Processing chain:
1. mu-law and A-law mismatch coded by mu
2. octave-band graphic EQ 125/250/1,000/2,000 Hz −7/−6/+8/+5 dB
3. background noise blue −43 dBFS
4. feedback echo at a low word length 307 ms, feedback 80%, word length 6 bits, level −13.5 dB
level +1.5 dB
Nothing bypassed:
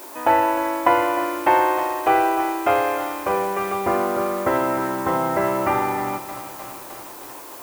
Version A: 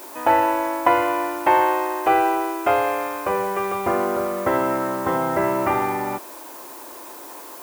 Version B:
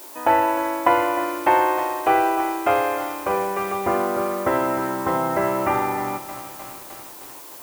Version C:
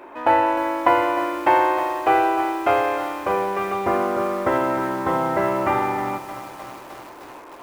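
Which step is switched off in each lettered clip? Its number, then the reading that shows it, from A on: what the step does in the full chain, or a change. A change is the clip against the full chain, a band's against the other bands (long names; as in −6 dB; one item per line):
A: 4, change in momentary loudness spread +2 LU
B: 1, distortion level −26 dB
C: 3, 8 kHz band −7.5 dB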